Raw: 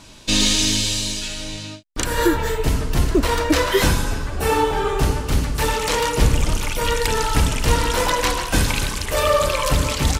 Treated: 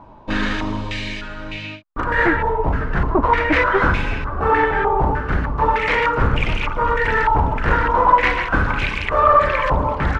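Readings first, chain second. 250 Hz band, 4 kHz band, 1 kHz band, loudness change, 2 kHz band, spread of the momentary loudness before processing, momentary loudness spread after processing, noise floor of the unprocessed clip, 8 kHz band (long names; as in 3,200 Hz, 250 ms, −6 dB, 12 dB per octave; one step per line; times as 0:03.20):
−1.0 dB, −9.5 dB, +7.0 dB, +1.5 dB, +6.0 dB, 6 LU, 12 LU, −34 dBFS, below −25 dB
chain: wavefolder on the positive side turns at −14 dBFS
low-pass on a step sequencer 3.3 Hz 910–2,400 Hz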